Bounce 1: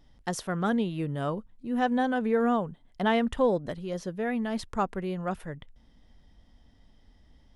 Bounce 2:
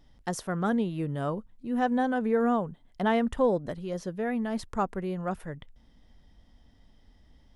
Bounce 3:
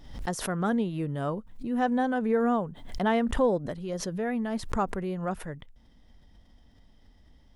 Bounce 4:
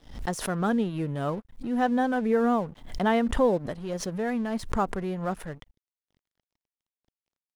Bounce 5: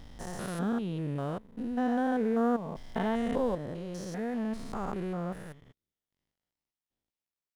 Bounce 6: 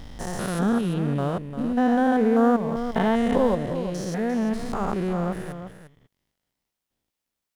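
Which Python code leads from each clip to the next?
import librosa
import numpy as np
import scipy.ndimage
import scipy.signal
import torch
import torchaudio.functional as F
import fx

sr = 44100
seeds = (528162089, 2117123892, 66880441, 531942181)

y1 = fx.dynamic_eq(x, sr, hz=3200.0, q=1.0, threshold_db=-49.0, ratio=4.0, max_db=-5)
y2 = fx.pre_swell(y1, sr, db_per_s=78.0)
y3 = np.sign(y2) * np.maximum(np.abs(y2) - 10.0 ** (-48.5 / 20.0), 0.0)
y3 = y3 * librosa.db_to_amplitude(2.0)
y4 = fx.spec_steps(y3, sr, hold_ms=200)
y4 = y4 * librosa.db_to_amplitude(-2.5)
y5 = y4 + 10.0 ** (-10.5 / 20.0) * np.pad(y4, (int(349 * sr / 1000.0), 0))[:len(y4)]
y5 = y5 * librosa.db_to_amplitude(8.5)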